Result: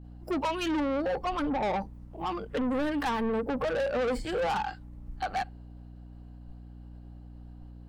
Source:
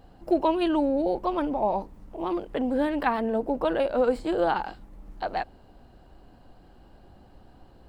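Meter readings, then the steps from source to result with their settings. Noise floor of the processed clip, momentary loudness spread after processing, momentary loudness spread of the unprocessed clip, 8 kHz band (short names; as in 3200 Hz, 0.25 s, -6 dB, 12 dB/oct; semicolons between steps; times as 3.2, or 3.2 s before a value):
-47 dBFS, 20 LU, 9 LU, n/a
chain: expander -50 dBFS; spectral noise reduction 13 dB; in parallel at -0.5 dB: limiter -21.5 dBFS, peak gain reduction 10 dB; on the sum: soft clip -26 dBFS, distortion -7 dB; hum 60 Hz, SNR 14 dB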